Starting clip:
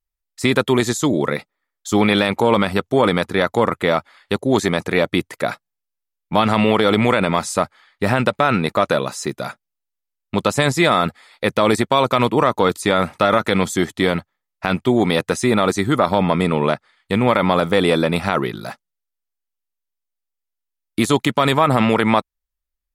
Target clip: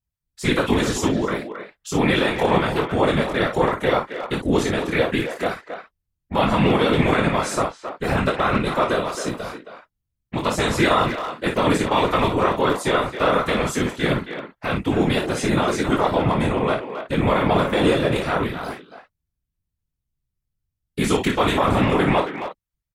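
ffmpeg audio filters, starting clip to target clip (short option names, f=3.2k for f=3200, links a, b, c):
-filter_complex "[0:a]asplit=2[a][b];[b]asetrate=35002,aresample=44100,atempo=1.25992,volume=-5dB[c];[a][c]amix=inputs=2:normalize=0,asplit=2[d][e];[e]aecho=0:1:23|56:0.631|0.447[f];[d][f]amix=inputs=2:normalize=0,afftfilt=real='hypot(re,im)*cos(2*PI*random(0))':imag='hypot(re,im)*sin(2*PI*random(1))':win_size=512:overlap=0.75,asplit=2[g][h];[h]adelay=270,highpass=300,lowpass=3.4k,asoftclip=type=hard:threshold=-15dB,volume=-8dB[i];[g][i]amix=inputs=2:normalize=0"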